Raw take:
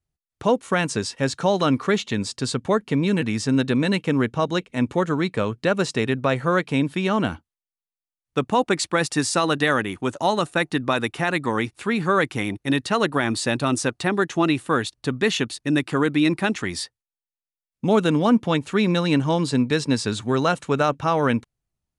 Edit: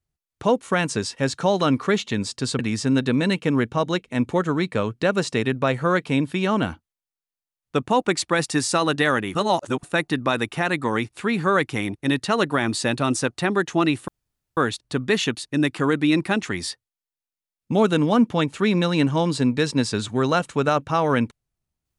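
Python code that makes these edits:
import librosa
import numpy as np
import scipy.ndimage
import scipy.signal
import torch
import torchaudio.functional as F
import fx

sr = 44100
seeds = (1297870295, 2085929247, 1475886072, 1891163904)

y = fx.edit(x, sr, fx.cut(start_s=2.59, length_s=0.62),
    fx.reverse_span(start_s=9.97, length_s=0.48),
    fx.insert_room_tone(at_s=14.7, length_s=0.49), tone=tone)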